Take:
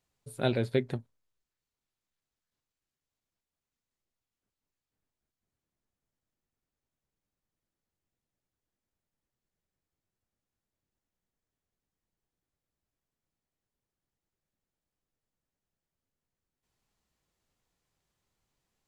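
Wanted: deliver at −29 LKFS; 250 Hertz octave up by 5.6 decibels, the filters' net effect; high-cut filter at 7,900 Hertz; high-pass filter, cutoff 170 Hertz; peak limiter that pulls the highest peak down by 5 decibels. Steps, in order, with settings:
high-pass filter 170 Hz
low-pass filter 7,900 Hz
parametric band 250 Hz +7.5 dB
level +2 dB
brickwall limiter −14 dBFS

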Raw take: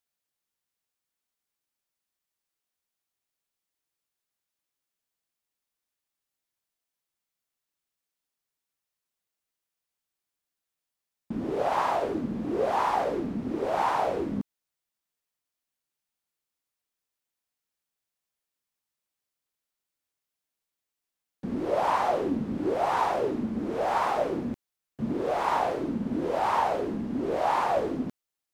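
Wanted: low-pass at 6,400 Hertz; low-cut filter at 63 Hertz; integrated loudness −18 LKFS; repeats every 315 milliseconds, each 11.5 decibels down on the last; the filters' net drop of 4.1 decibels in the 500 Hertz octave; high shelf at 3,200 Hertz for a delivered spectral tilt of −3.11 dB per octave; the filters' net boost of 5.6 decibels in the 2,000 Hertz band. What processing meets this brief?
high-pass filter 63 Hz
low-pass filter 6,400 Hz
parametric band 500 Hz −6 dB
parametric band 2,000 Hz +5 dB
high-shelf EQ 3,200 Hz +8.5 dB
repeating echo 315 ms, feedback 27%, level −11.5 dB
level +10.5 dB

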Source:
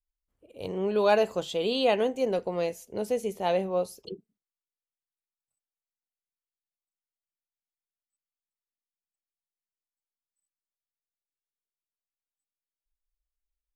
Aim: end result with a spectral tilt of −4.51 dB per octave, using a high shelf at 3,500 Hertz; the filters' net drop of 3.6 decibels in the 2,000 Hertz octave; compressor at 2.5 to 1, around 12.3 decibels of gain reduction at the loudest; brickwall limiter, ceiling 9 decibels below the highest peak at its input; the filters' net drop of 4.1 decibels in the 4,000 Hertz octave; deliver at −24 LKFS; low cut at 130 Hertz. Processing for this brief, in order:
high-pass filter 130 Hz
parametric band 2,000 Hz −4.5 dB
high-shelf EQ 3,500 Hz +4.5 dB
parametric band 4,000 Hz −6.5 dB
downward compressor 2.5 to 1, threshold −38 dBFS
level +19 dB
brickwall limiter −14.5 dBFS

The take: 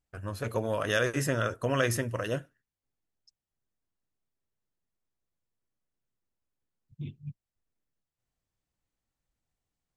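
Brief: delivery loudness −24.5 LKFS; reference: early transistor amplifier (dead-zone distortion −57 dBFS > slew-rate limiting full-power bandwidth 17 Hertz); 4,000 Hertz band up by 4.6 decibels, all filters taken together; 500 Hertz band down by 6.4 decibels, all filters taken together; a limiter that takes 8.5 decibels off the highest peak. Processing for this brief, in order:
parametric band 500 Hz −7.5 dB
parametric band 4,000 Hz +6.5 dB
brickwall limiter −20.5 dBFS
dead-zone distortion −57 dBFS
slew-rate limiting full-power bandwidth 17 Hz
level +12.5 dB

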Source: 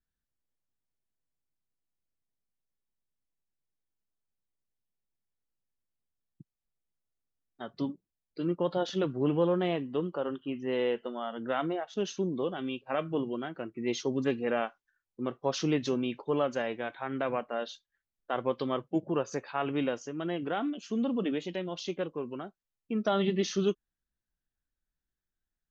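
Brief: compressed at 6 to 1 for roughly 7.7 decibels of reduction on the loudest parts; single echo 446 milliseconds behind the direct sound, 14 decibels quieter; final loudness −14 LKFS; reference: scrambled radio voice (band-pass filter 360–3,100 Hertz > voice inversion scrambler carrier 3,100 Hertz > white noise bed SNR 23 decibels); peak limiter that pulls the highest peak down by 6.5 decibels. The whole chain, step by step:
downward compressor 6 to 1, threshold −31 dBFS
brickwall limiter −26.5 dBFS
band-pass filter 360–3,100 Hz
single-tap delay 446 ms −14 dB
voice inversion scrambler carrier 3,100 Hz
white noise bed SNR 23 dB
level +24 dB

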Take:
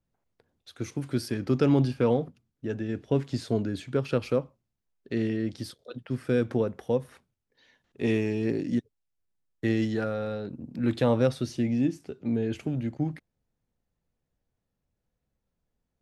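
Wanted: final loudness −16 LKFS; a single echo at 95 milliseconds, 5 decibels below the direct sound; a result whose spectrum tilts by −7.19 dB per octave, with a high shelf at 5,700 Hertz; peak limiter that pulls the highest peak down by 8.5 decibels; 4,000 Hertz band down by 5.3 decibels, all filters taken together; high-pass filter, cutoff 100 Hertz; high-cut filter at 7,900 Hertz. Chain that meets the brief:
high-pass filter 100 Hz
low-pass filter 7,900 Hz
parametric band 4,000 Hz −5 dB
high-shelf EQ 5,700 Hz −4 dB
brickwall limiter −20 dBFS
single-tap delay 95 ms −5 dB
level +15 dB

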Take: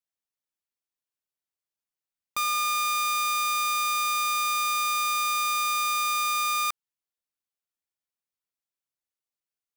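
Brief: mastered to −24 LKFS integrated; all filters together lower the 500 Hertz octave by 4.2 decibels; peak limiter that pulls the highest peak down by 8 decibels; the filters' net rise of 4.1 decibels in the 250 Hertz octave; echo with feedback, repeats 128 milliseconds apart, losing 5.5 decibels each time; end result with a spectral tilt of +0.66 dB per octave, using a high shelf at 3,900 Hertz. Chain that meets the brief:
parametric band 250 Hz +6.5 dB
parametric band 500 Hz −6.5 dB
high-shelf EQ 3,900 Hz −6 dB
brickwall limiter −30.5 dBFS
repeating echo 128 ms, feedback 53%, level −5.5 dB
level +9 dB

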